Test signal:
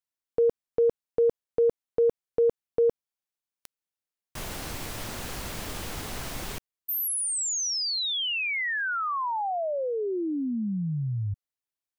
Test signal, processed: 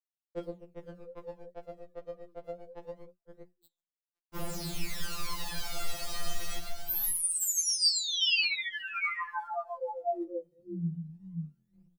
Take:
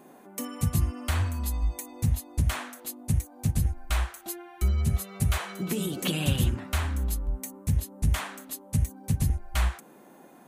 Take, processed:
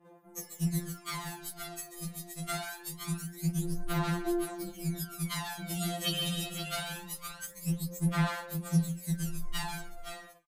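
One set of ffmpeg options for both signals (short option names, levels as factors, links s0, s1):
-filter_complex "[0:a]bandreject=f=60:t=h:w=6,bandreject=f=120:t=h:w=6,bandreject=f=180:t=h:w=6,bandreject=f=240:t=h:w=6,bandreject=f=300:t=h:w=6,bandreject=f=360:t=h:w=6,aecho=1:1:139|502|522:0.398|0.188|0.422,adynamicequalizer=threshold=0.00282:dfrequency=4400:dqfactor=2.5:tfrequency=4400:tqfactor=2.5:attack=5:release=100:ratio=0.375:range=3:mode=boostabove:tftype=bell,aphaser=in_gain=1:out_gain=1:delay=1.6:decay=0.73:speed=0.24:type=sinusoidal,asplit=2[s0][s1];[s1]asoftclip=type=hard:threshold=0.251,volume=0.596[s2];[s0][s2]amix=inputs=2:normalize=0,agate=range=0.0224:threshold=0.0251:ratio=3:release=164:detection=rms,flanger=delay=4.4:depth=8.4:regen=85:speed=0.62:shape=triangular,afftfilt=real='re*2.83*eq(mod(b,8),0)':imag='im*2.83*eq(mod(b,8),0)':win_size=2048:overlap=0.75,volume=0.596"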